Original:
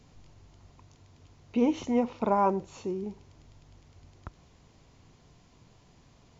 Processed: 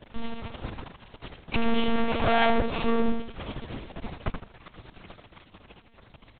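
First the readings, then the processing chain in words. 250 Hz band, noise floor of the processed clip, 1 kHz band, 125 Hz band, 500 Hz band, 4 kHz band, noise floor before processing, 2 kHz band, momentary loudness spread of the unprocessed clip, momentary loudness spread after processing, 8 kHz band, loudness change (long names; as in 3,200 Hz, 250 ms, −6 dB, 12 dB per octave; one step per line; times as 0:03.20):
+1.5 dB, −58 dBFS, +2.0 dB, +7.0 dB, +2.5 dB, +16.0 dB, −60 dBFS, +17.0 dB, 11 LU, 22 LU, can't be measured, 0.0 dB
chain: comb filter 3.5 ms, depth 96%
leveller curve on the samples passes 5
in parallel at +2 dB: downward compressor, threshold −26 dBFS, peak gain reduction 12.5 dB
on the sum: soft clipping −21 dBFS, distortion −10 dB
on a send: repeating echo 77 ms, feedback 31%, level −5.5 dB
on the sum: one-pitch LPC vocoder at 8 kHz 230 Hz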